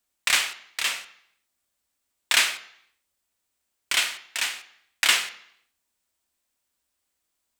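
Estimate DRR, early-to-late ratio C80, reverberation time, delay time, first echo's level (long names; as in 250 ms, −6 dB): 8.5 dB, 16.5 dB, 0.70 s, no echo audible, no echo audible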